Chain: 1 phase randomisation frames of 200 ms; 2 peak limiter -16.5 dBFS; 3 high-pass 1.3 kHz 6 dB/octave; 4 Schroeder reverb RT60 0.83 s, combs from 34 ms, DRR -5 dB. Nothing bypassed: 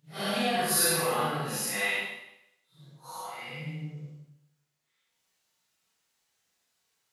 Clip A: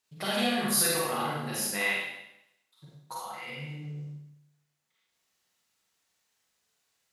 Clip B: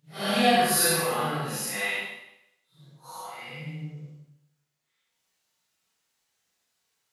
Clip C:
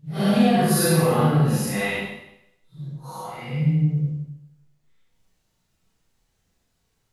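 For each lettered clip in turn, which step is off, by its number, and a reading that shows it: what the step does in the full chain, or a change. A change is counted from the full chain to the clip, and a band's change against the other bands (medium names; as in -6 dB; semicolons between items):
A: 1, 250 Hz band +2.5 dB; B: 2, 1 kHz band +2.0 dB; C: 3, 125 Hz band +15.0 dB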